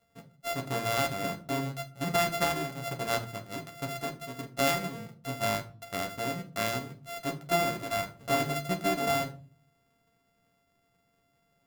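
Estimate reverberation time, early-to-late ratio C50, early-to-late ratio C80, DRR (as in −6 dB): 0.45 s, 14.0 dB, 20.0 dB, 2.5 dB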